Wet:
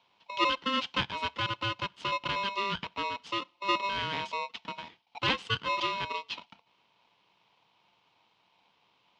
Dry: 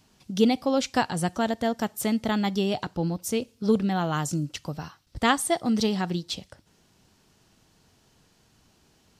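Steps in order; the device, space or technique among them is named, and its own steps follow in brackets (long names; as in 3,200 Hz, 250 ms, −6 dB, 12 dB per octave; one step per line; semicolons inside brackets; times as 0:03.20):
ring modulator pedal into a guitar cabinet (ring modulator with a square carrier 790 Hz; loudspeaker in its box 95–4,300 Hz, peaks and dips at 190 Hz +5 dB, 380 Hz −3 dB, 610 Hz −9 dB, 940 Hz +3 dB, 1,700 Hz −5 dB, 3,000 Hz +10 dB)
level −6.5 dB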